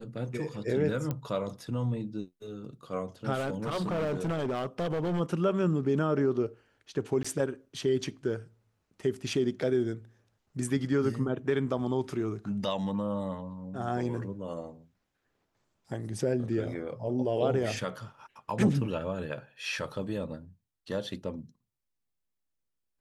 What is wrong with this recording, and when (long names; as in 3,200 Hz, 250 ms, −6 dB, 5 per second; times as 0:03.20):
0:01.11: click −19 dBFS
0:03.34–0:05.21: clipping −27 dBFS
0:07.23–0:07.25: drop-out 15 ms
0:18.50: drop-out 4.9 ms